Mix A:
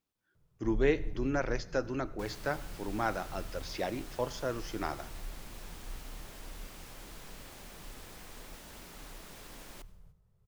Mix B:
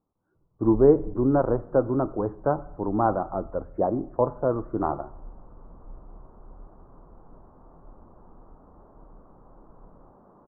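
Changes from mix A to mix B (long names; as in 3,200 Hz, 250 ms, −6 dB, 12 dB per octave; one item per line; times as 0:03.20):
speech +11.0 dB
second sound: entry +2.55 s
master: add Butterworth low-pass 1,200 Hz 48 dB per octave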